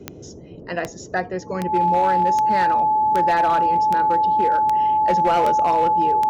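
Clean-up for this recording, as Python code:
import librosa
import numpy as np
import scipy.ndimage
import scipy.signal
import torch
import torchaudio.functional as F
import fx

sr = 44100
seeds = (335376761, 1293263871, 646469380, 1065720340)

y = fx.fix_declip(x, sr, threshold_db=-12.5)
y = fx.fix_declick_ar(y, sr, threshold=10.0)
y = fx.notch(y, sr, hz=860.0, q=30.0)
y = fx.noise_reduce(y, sr, print_start_s=0.0, print_end_s=0.5, reduce_db=28.0)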